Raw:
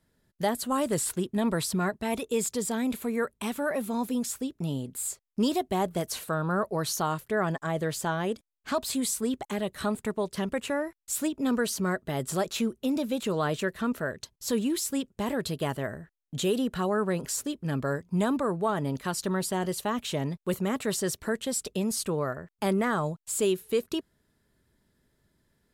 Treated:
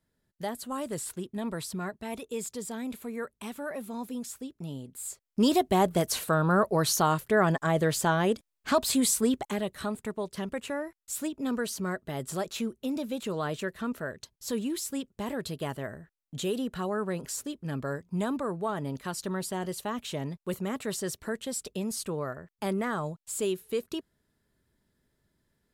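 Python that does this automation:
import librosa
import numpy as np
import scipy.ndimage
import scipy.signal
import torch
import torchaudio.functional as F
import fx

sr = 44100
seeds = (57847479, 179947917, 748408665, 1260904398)

y = fx.gain(x, sr, db=fx.line((4.97, -7.0), (5.53, 4.0), (9.24, 4.0), (9.89, -4.0)))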